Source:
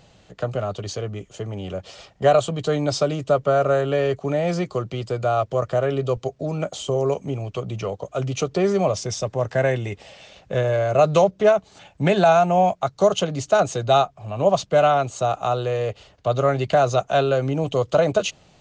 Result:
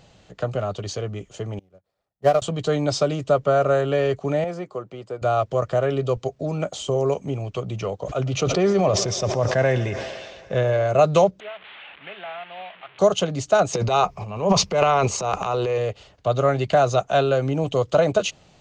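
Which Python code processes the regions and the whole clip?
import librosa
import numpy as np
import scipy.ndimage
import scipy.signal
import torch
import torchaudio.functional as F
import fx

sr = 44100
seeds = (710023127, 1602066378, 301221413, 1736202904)

y = fx.chain(x, sr, fx.median_filter(points=15),
    fx.upward_expand(threshold_db=-33.0, expansion=2.5), at=(1.59, 2.42))
y = fx.chain(y, sr, fx.highpass(hz=550.0, slope=6),
    fx.peak_eq(hz=4900.0, db=-14.0, octaves=2.8), at=(4.44, 5.22))
y = fx.chain(y, sr, fx.lowpass(hz=6300.0, slope=12),
    fx.echo_thinned(ms=115, feedback_pct=84, hz=180.0, wet_db=-19.5),
    fx.sustainer(db_per_s=36.0), at=(8.03, 10.87))
y = fx.chain(y, sr, fx.delta_mod(bps=16000, step_db=-22.0),
    fx.differentiator(), at=(11.4, 12.99))
y = fx.chain(y, sr, fx.ripple_eq(per_octave=0.83, db=8),
    fx.transient(attack_db=-6, sustain_db=11), at=(13.73, 15.78))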